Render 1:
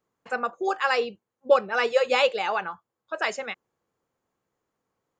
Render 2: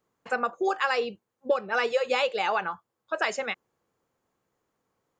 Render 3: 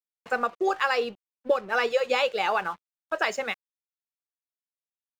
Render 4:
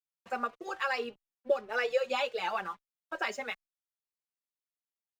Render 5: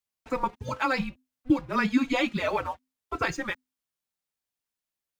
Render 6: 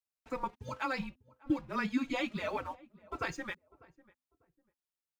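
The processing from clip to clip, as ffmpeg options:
ffmpeg -i in.wav -af "acompressor=threshold=-24dB:ratio=6,volume=2.5dB" out.wav
ffmpeg -i in.wav -af "aeval=exprs='sgn(val(0))*max(abs(val(0))-0.00316,0)':channel_layout=same,volume=1.5dB" out.wav
ffmpeg -i in.wav -filter_complex "[0:a]asplit=2[link_01][link_02];[link_02]adelay=4.2,afreqshift=1.7[link_03];[link_01][link_03]amix=inputs=2:normalize=1,volume=-4dB" out.wav
ffmpeg -i in.wav -af "afreqshift=-260,volume=5.5dB" out.wav
ffmpeg -i in.wav -filter_complex "[0:a]asplit=2[link_01][link_02];[link_02]adelay=597,lowpass=frequency=810:poles=1,volume=-20dB,asplit=2[link_03][link_04];[link_04]adelay=597,lowpass=frequency=810:poles=1,volume=0.29[link_05];[link_01][link_03][link_05]amix=inputs=3:normalize=0,volume=-8.5dB" out.wav

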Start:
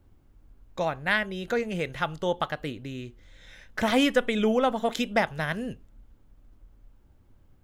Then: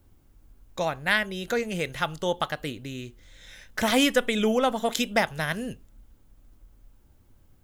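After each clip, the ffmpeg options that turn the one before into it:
ffmpeg -i in.wav -af "highshelf=frequency=4600:gain=11.5" out.wav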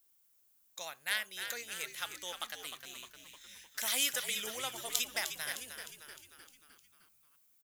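ffmpeg -i in.wav -filter_complex "[0:a]aderivative,asplit=7[link_01][link_02][link_03][link_04][link_05][link_06][link_07];[link_02]adelay=306,afreqshift=-82,volume=-8.5dB[link_08];[link_03]adelay=612,afreqshift=-164,volume=-13.9dB[link_09];[link_04]adelay=918,afreqshift=-246,volume=-19.2dB[link_10];[link_05]adelay=1224,afreqshift=-328,volume=-24.6dB[link_11];[link_06]adelay=1530,afreqshift=-410,volume=-29.9dB[link_12];[link_07]adelay=1836,afreqshift=-492,volume=-35.3dB[link_13];[link_01][link_08][link_09][link_10][link_11][link_12][link_13]amix=inputs=7:normalize=0" out.wav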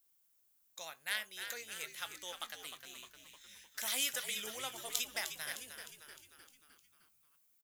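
ffmpeg -i in.wav -filter_complex "[0:a]asplit=2[link_01][link_02];[link_02]adelay=19,volume=-14dB[link_03];[link_01][link_03]amix=inputs=2:normalize=0,volume=-3.5dB" out.wav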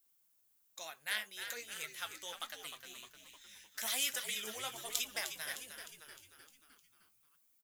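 ffmpeg -i in.wav -af "flanger=delay=2.6:depth=8.3:regen=40:speed=1.2:shape=triangular,volume=4dB" out.wav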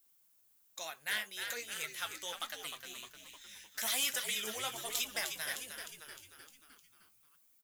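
ffmpeg -i in.wav -af "asoftclip=type=tanh:threshold=-29dB,volume=4dB" out.wav

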